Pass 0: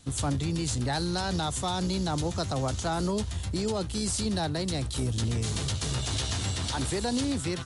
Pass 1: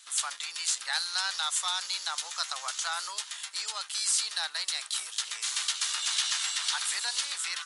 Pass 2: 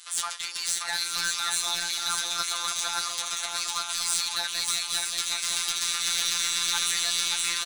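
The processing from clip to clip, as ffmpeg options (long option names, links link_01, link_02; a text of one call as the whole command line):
ffmpeg -i in.wav -af "highpass=frequency=1200:width=0.5412,highpass=frequency=1200:width=1.3066,volume=5dB" out.wav
ffmpeg -i in.wav -filter_complex "[0:a]asoftclip=type=tanh:threshold=-29.5dB,afftfilt=real='hypot(re,im)*cos(PI*b)':imag='0':win_size=1024:overlap=0.75,asplit=2[link_01][link_02];[link_02]aecho=0:1:580|928|1137|1262|1337:0.631|0.398|0.251|0.158|0.1[link_03];[link_01][link_03]amix=inputs=2:normalize=0,volume=8.5dB" out.wav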